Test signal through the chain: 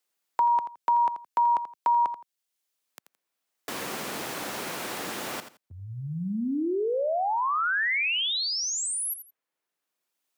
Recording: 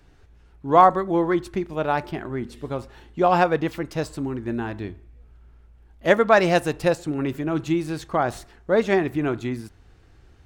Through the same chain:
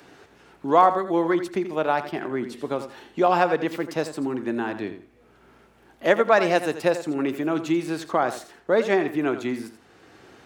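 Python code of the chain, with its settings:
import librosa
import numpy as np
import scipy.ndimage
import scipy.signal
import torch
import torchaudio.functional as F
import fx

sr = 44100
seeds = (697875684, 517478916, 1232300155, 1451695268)

p1 = scipy.signal.sosfilt(scipy.signal.butter(2, 240.0, 'highpass', fs=sr, output='sos'), x)
p2 = p1 + fx.echo_feedback(p1, sr, ms=84, feedback_pct=19, wet_db=-12, dry=0)
y = fx.band_squash(p2, sr, depth_pct=40)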